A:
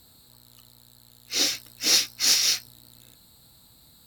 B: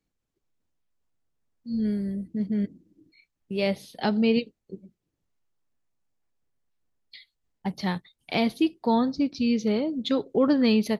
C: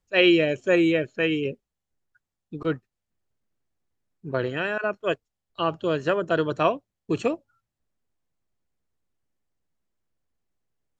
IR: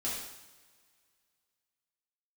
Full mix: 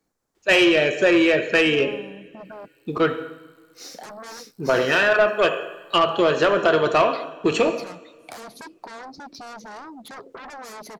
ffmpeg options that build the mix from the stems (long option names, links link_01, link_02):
-filter_complex "[0:a]adelay=2450,volume=-19.5dB[link_01];[1:a]acrossover=split=380[link_02][link_03];[link_03]acompressor=threshold=-22dB:ratio=6[link_04];[link_02][link_04]amix=inputs=2:normalize=0,aeval=exprs='0.266*sin(PI/2*7.08*val(0)/0.266)':channel_layout=same,acompressor=threshold=-21dB:ratio=6,volume=-17.5dB,asplit=3[link_05][link_06][link_07];[link_05]atrim=end=2.68,asetpts=PTS-STARTPTS,afade=type=out:start_time=2.676:duration=0.004:curve=hsin[link_08];[link_06]atrim=start=2.68:end=3.94,asetpts=PTS-STARTPTS,volume=0[link_09];[link_07]atrim=start=3.94,asetpts=PTS-STARTPTS,afade=type=in:duration=0.004:curve=hsin[link_10];[link_08][link_09][link_10]concat=n=3:v=0:a=1[link_11];[2:a]acompressor=threshold=-23dB:ratio=6,adelay=350,volume=1.5dB,asplit=2[link_12][link_13];[link_13]volume=-8.5dB[link_14];[link_01][link_11]amix=inputs=2:normalize=0,equalizer=frequency=2900:width_type=o:width=1.3:gain=-14,acompressor=threshold=-45dB:ratio=6,volume=0dB[link_15];[3:a]atrim=start_sample=2205[link_16];[link_14][link_16]afir=irnorm=-1:irlink=0[link_17];[link_12][link_15][link_17]amix=inputs=3:normalize=0,asplit=2[link_18][link_19];[link_19]highpass=frequency=720:poles=1,volume=18dB,asoftclip=type=tanh:threshold=-6.5dB[link_20];[link_18][link_20]amix=inputs=2:normalize=0,lowpass=frequency=5000:poles=1,volume=-6dB"